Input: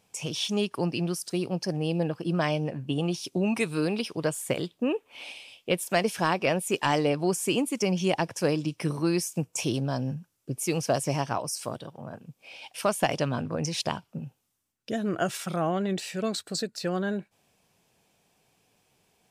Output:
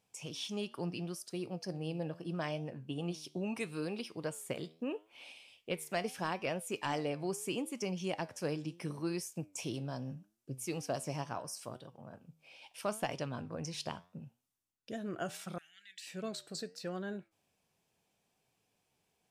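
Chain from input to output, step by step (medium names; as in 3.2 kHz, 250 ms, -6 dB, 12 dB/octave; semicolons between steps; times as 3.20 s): flange 0.76 Hz, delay 7.3 ms, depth 6.4 ms, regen +84%; 15.58–16.07 s: elliptic high-pass 1.7 kHz, stop band 40 dB; trim -6.5 dB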